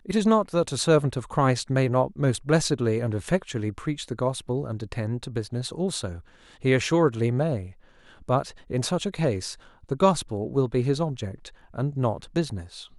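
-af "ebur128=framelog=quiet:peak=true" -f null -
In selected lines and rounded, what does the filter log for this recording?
Integrated loudness:
  I:         -25.7 LUFS
  Threshold: -36.1 LUFS
Loudness range:
  LRA:         4.8 LU
  Threshold: -46.5 LUFS
  LRA low:   -28.8 LUFS
  LRA high:  -24.0 LUFS
True peak:
  Peak:       -6.8 dBFS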